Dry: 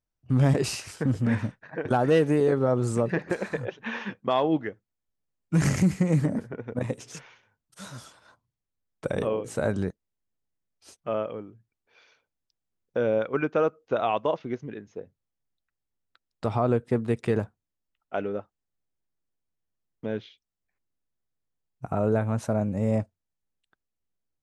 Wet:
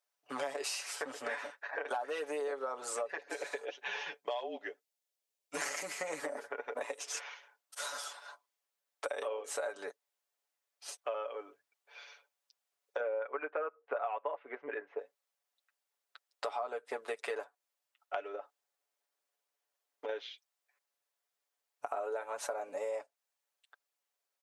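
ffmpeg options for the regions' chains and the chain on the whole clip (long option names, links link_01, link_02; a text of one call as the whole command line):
ffmpeg -i in.wav -filter_complex "[0:a]asettb=1/sr,asplit=3[link_01][link_02][link_03];[link_01]atrim=end=3.174[link_04];[link_02]atrim=start=3.17:end=5.57,asetpts=PTS-STARTPTS,afade=type=in:duration=0.004:curve=qsin,afade=type=out:start_time=2.396:duration=0.004:curve=qsin,equalizer=frequency=1300:width_type=o:width=1.5:gain=-11.5,afreqshift=-42[link_05];[link_03]atrim=start=5.566[link_06];[link_04][link_05]acrossfade=duration=0.004:curve1=hsin:curve2=qsin[link_07];[link_07][link_06]acrossfade=duration=0.004:curve1=qsin:curve2=hsin,asettb=1/sr,asplit=3[link_08][link_09][link_10];[link_08]atrim=end=13.004[link_11];[link_09]atrim=start=13:end=14.99,asetpts=PTS-STARTPTS,afade=type=in:duration=0.004:curve=qsin,afade=type=out:start_time=1.986:duration=0.004:curve=qsin,lowpass=frequency=2200:width=0.5412,lowpass=frequency=2200:width=1.3066,acontrast=20[link_12];[link_10]atrim=start=14.986[link_13];[link_11][link_12]acrossfade=duration=0.004:curve1=hsin:curve2=qsin[link_14];[link_14][link_13]acrossfade=duration=0.004:curve1=qsin:curve2=hsin,asettb=1/sr,asplit=3[link_15][link_16][link_17];[link_15]atrim=end=18.354[link_18];[link_16]atrim=start=18.35:end=20.09,asetpts=PTS-STARTPTS,afade=type=in:duration=0.004:curve=qsin,afade=type=out:start_time=1.736:duration=0.004:curve=qsin,equalizer=frequency=280:width=0.43:gain=4,acompressor=threshold=-32dB:ratio=5:attack=3.2:release=140:knee=1:detection=peak[link_19];[link_17]atrim=start=20.086[link_20];[link_18][link_19]acrossfade=duration=0.004:curve1=hsin:curve2=qsin[link_21];[link_21][link_20]acrossfade=duration=0.004:curve1=qsin:curve2=hsin,highpass=frequency=540:width=0.5412,highpass=frequency=540:width=1.3066,aecho=1:1:7:0.76,acompressor=threshold=-40dB:ratio=6,volume=4.5dB" out.wav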